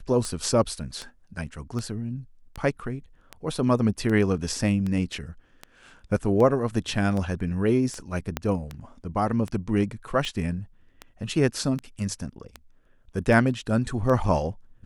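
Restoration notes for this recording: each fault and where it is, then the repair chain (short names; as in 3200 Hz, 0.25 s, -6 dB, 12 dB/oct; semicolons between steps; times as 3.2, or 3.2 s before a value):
tick 78 rpm -19 dBFS
8.37 pop -11 dBFS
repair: de-click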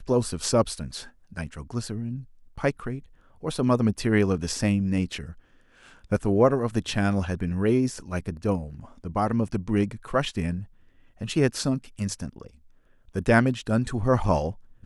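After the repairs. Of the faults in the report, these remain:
8.37 pop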